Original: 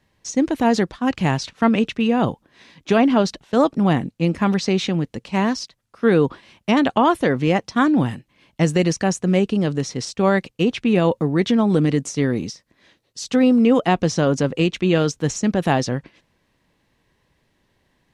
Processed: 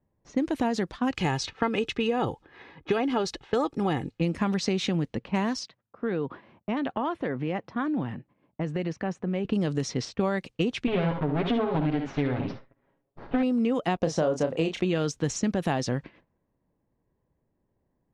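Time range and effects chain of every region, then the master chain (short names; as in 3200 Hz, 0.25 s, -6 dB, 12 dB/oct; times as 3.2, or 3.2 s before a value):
1.16–4.21 comb 2.4 ms, depth 54% + mismatched tape noise reduction encoder only
5.59–9.45 HPF 100 Hz + compressor 2:1, threshold -33 dBFS
10.87–13.43 minimum comb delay 7.3 ms + LPF 3600 Hz 24 dB/oct + tapped delay 55/72 ms -10/-8 dB
13.97–14.85 expander -43 dBFS + bell 650 Hz +10 dB 1.2 oct + doubler 31 ms -7.5 dB
whole clip: gate -53 dBFS, range -8 dB; low-pass opened by the level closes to 750 Hz, open at -17 dBFS; compressor 6:1, threshold -23 dBFS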